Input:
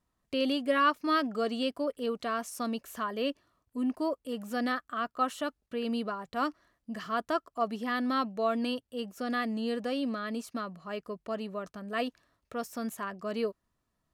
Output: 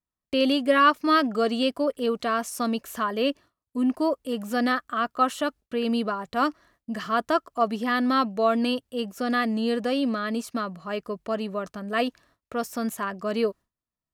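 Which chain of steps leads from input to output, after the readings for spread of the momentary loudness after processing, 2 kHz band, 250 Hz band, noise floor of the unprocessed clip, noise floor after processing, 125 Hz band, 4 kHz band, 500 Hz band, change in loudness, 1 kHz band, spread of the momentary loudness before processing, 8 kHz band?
10 LU, +7.0 dB, +7.0 dB, −82 dBFS, below −85 dBFS, can't be measured, +7.0 dB, +7.0 dB, +7.0 dB, +7.0 dB, 10 LU, +7.0 dB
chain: noise gate with hold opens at −58 dBFS
level +7 dB

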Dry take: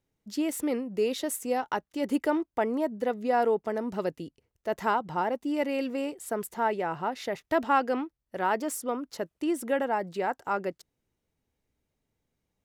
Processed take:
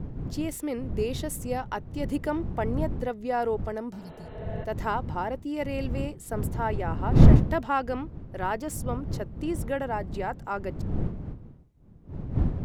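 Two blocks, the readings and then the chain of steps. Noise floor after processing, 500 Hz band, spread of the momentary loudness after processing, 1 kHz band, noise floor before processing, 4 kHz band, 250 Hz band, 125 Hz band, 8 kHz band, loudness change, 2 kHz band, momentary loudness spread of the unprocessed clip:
−47 dBFS, −2.0 dB, 9 LU, −2.5 dB, −83 dBFS, −2.5 dB, +2.0 dB, +22.5 dB, −2.5 dB, +1.5 dB, −2.5 dB, 8 LU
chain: wind on the microphone 140 Hz −25 dBFS
healed spectral selection 0:03.96–0:04.62, 240–4,200 Hz both
level −2.5 dB

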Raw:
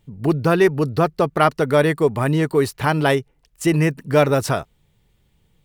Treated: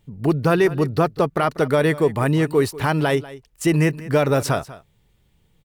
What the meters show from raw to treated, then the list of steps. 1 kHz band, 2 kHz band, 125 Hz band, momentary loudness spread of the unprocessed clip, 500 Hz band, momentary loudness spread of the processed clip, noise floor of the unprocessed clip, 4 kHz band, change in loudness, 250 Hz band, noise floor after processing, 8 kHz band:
−2.5 dB, −1.5 dB, −0.5 dB, 5 LU, −1.5 dB, 6 LU, −63 dBFS, −1.5 dB, −1.0 dB, −0.5 dB, −62 dBFS, −0.5 dB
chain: brickwall limiter −8 dBFS, peak gain reduction 6.5 dB
on a send: single-tap delay 192 ms −17.5 dB

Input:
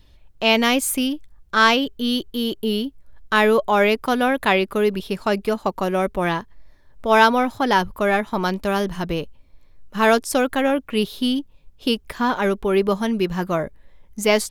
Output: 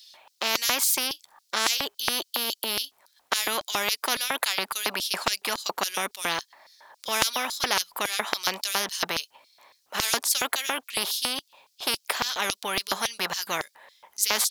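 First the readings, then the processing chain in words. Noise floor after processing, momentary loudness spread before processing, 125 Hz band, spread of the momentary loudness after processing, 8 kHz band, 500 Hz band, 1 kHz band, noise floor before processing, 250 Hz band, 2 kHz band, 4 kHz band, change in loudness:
−69 dBFS, 9 LU, −17.5 dB, 7 LU, +5.5 dB, −15.5 dB, −9.5 dB, −52 dBFS, −20.0 dB, −6.5 dB, +0.5 dB, −6.0 dB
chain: auto-filter high-pass square 3.6 Hz 840–4,700 Hz
every bin compressed towards the loudest bin 4 to 1
level −4.5 dB

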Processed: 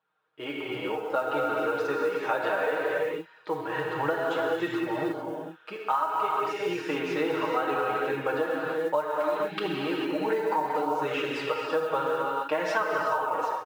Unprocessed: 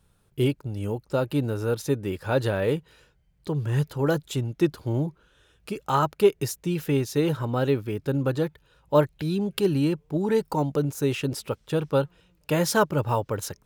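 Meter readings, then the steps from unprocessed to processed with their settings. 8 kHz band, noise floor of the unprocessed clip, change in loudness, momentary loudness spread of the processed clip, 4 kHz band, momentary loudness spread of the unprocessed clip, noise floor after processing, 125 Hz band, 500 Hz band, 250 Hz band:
below −10 dB, −65 dBFS, −2.5 dB, 5 LU, −2.0 dB, 8 LU, −55 dBFS, −18.5 dB, −2.0 dB, −6.5 dB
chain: high-pass filter 820 Hz 12 dB per octave
comb filter 6.4 ms
reverb whose tail is shaped and stops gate 480 ms flat, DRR −2.5 dB
flanger 0.62 Hz, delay 0.2 ms, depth 6 ms, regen −55%
automatic gain control gain up to 11.5 dB
low-pass filter 1,700 Hz 12 dB per octave
noise that follows the level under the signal 31 dB
downward compressor 12 to 1, threshold −23 dBFS, peak gain reduction 13.5 dB

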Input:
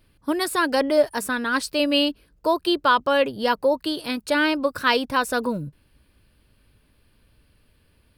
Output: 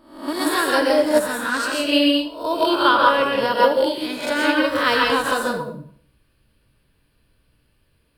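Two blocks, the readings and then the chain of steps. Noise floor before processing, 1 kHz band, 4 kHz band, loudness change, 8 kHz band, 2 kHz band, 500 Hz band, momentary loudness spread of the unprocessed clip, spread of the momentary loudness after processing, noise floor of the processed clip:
−62 dBFS, +4.0 dB, +3.5 dB, +3.5 dB, +3.0 dB, +3.5 dB, +3.0 dB, 8 LU, 9 LU, −64 dBFS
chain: peak hold with a rise ahead of every peak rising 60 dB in 0.61 s
dense smooth reverb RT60 0.58 s, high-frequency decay 0.85×, pre-delay 110 ms, DRR −1.5 dB
expander for the loud parts 1.5 to 1, over −26 dBFS

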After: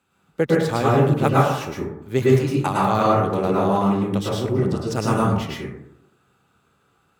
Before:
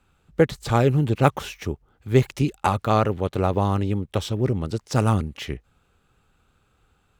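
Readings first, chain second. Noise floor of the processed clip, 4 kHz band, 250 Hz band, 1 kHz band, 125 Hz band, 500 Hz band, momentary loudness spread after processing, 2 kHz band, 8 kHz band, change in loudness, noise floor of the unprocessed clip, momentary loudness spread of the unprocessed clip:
−65 dBFS, +1.5 dB, +4.0 dB, +4.0 dB, +0.5 dB, +3.5 dB, 10 LU, +3.0 dB, +2.0 dB, +2.5 dB, −66 dBFS, 13 LU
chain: high-pass filter 140 Hz 12 dB per octave
high-shelf EQ 6,500 Hz +4 dB
dense smooth reverb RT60 0.8 s, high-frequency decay 0.35×, pre-delay 95 ms, DRR −5.5 dB
level −3.5 dB

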